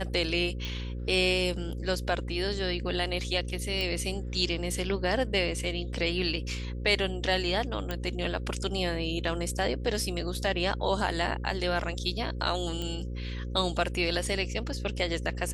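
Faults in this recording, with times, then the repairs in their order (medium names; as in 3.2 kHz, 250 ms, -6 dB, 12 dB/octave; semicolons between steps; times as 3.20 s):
buzz 60 Hz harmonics 9 -35 dBFS
0.65 s: pop
3.81 s: pop -18 dBFS
7.91 s: pop -17 dBFS
12.82 s: pop -21 dBFS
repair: de-click; de-hum 60 Hz, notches 9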